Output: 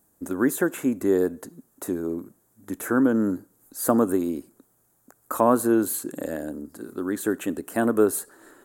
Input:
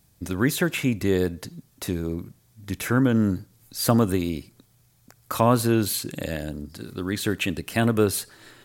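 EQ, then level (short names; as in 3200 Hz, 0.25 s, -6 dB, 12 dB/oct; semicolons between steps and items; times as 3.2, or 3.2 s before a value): resonant low shelf 190 Hz -12.5 dB, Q 1.5; band shelf 3400 Hz -14.5 dB; 0.0 dB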